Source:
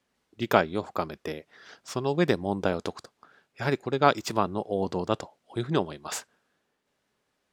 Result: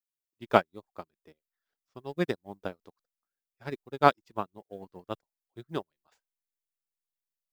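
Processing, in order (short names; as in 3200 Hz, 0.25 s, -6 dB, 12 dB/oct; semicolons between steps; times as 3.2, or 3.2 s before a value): median filter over 5 samples; reverb removal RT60 0.56 s; added noise blue -58 dBFS; in parallel at -6 dB: backlash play -31 dBFS; on the sum: upward expander 2.5:1, over -37 dBFS; gain -1.5 dB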